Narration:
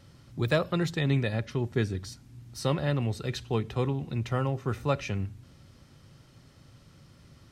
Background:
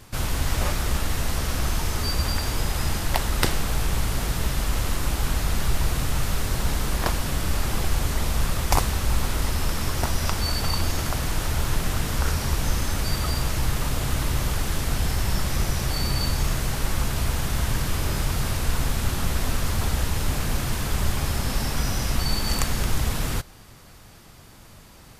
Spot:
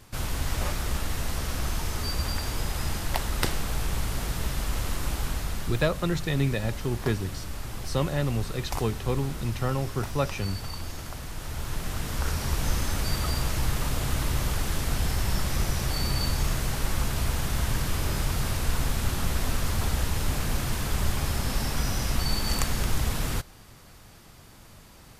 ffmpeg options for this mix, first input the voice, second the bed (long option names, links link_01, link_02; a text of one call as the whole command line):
ffmpeg -i stem1.wav -i stem2.wav -filter_complex "[0:a]adelay=5300,volume=0.5dB[link_01];[1:a]volume=4.5dB,afade=type=out:start_time=5.14:duration=0.76:silence=0.446684,afade=type=in:start_time=11.35:duration=1.35:silence=0.354813[link_02];[link_01][link_02]amix=inputs=2:normalize=0" out.wav